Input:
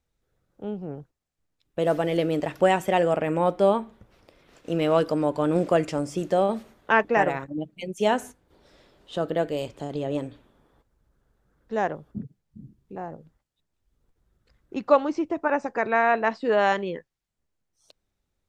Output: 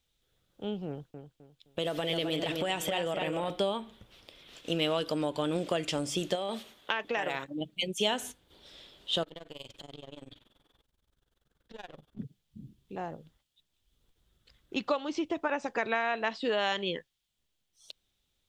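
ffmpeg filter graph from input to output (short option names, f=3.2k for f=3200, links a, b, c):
-filter_complex "[0:a]asettb=1/sr,asplit=3[a][b][c];[a]atrim=end=0.884[d];[b]atrim=start=0.88:end=3.5,asetpts=PTS-STARTPTS,afade=t=in:d=0.004:c=qsin,afade=t=out:st=2.616:d=0.004:c=qsin,asplit=2[e][f];[f]adelay=259,lowpass=f=4.3k:p=1,volume=-7.5dB,asplit=2[g][h];[h]adelay=259,lowpass=f=4.3k:p=1,volume=0.32,asplit=2[i][j];[j]adelay=259,lowpass=f=4.3k:p=1,volume=0.32,asplit=2[k][l];[l]adelay=259,lowpass=f=4.3k:p=1,volume=0.32[m];[e][g][i][k][m]amix=inputs=5:normalize=0,atrim=end_sample=115542,acompressor=threshold=-25dB:ratio=5:attack=3.2:release=140:knee=1:detection=peak[n];[c]atrim=start=3.496[o];[d][n]acrossfade=d=0.004:c1=hsin:c2=qsin[p];[p][o]acrossfade=d=0.004:c1=qsin:c2=hsin,asettb=1/sr,asplit=3[q][r][s];[q]atrim=end=6.354[t];[r]atrim=start=6.35:end=7.61,asetpts=PTS-STARTPTS,afade=t=in:d=0.004:c=qsin,afade=t=out:st=1.256:d=0.004:c=qsin,lowshelf=f=190:g=-10.5,acompressor=threshold=-24dB:ratio=6:attack=3.2:release=140:knee=1:detection=peak[u];[s]atrim=start=7.606[v];[t][u]acrossfade=d=0.004:c1=hsin:c2=qsin[w];[w][v]acrossfade=d=0.004:c1=qsin:c2=hsin,asettb=1/sr,asplit=3[x][y][z];[x]atrim=end=9.234[aa];[y]atrim=start=9.23:end=12.19,asetpts=PTS-STARTPTS,afade=t=in:d=0.004:c=qsin,afade=t=out:st=2.956:d=0.004:c=qsin,aeval=exprs='if(lt(val(0),0),0.447*val(0),val(0))':c=same,acompressor=threshold=-37dB:ratio=5:attack=3.2:release=140:knee=1:detection=peak,tremolo=f=21:d=0.919[ab];[z]atrim=start=12.186[ac];[aa][ab]acrossfade=d=0.004:c1=hsin:c2=qsin[ad];[ad][ac]acrossfade=d=0.004:c1=qsin:c2=hsin,highshelf=f=4.6k:g=9,acompressor=threshold=-24dB:ratio=6,equalizer=f=3.3k:w=1.8:g=14,volume=-3dB"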